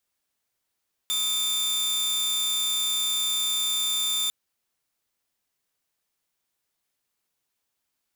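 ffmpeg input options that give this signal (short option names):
-f lavfi -i "aevalsrc='0.0891*(2*mod(3570*t,1)-1)':d=3.2:s=44100"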